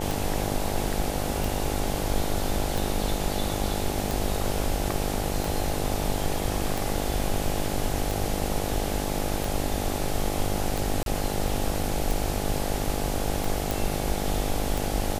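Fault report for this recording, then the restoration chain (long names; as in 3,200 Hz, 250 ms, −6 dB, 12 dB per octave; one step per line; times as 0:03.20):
mains buzz 50 Hz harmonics 17 −31 dBFS
scratch tick 45 rpm
0:11.03–0:11.06: drop-out 32 ms
0:13.71: click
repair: click removal
hum removal 50 Hz, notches 17
repair the gap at 0:11.03, 32 ms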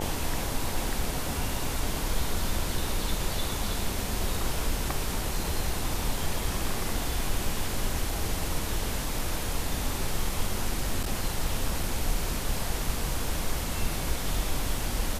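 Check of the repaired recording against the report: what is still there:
none of them is left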